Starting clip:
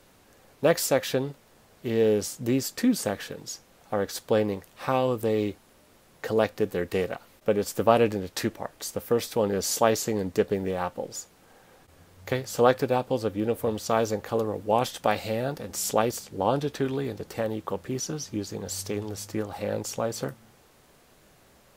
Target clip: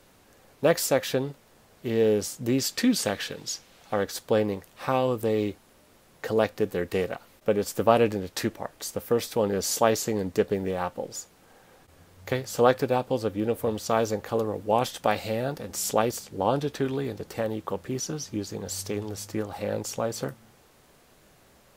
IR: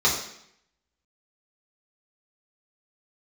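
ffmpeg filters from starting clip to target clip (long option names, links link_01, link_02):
-filter_complex "[0:a]asettb=1/sr,asplit=3[link_01][link_02][link_03];[link_01]atrim=end=2.584[link_04];[link_02]atrim=start=2.58:end=4.04,asetpts=PTS-STARTPTS,afade=type=in:duration=0.004:curve=qsin,afade=type=out:start_time=1.456:duration=0.004:curve=qsin,equalizer=frequency=3500:width=0.64:gain=7.5[link_05];[link_03]atrim=start=4.036[link_06];[link_04][link_05]acrossfade=duration=0.004:curve1=hsin:curve2=qsin[link_07];[link_07][link_06]acrossfade=duration=0.004:curve1=qsin:curve2=hsin"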